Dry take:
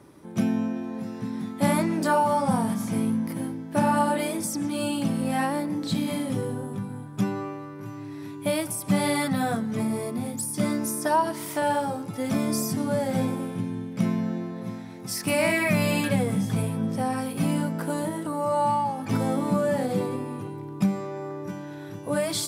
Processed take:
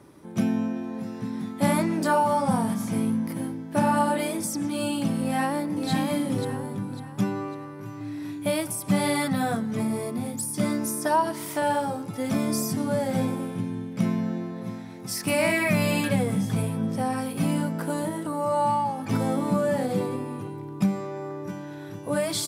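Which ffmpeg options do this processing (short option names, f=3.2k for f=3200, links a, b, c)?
-filter_complex "[0:a]asplit=2[a][b];[b]afade=t=in:st=5.21:d=0.01,afade=t=out:st=5.89:d=0.01,aecho=0:1:550|1100|1650|2200|2750:0.562341|0.224937|0.0899746|0.0359898|0.0143959[c];[a][c]amix=inputs=2:normalize=0,asettb=1/sr,asplit=3[d][e][f];[d]atrim=end=7.974[g];[e]atrim=start=7.97:end=8.47,asetpts=PTS-STARTPTS,afade=t=in:d=0.004:c=qsin,afade=t=out:st=0.496:d=0.004:c=qsin,asplit=2[h][i];[i]adelay=37,volume=-2dB[j];[h][j]amix=inputs=2:normalize=0,atrim=end_sample=22050[k];[f]atrim=start=8.466[l];[g][k]acrossfade=d=0.004:c1=hsin:c2=qsin[m];[m][l]acrossfade=d=0.004:c1=qsin:c2=hsin"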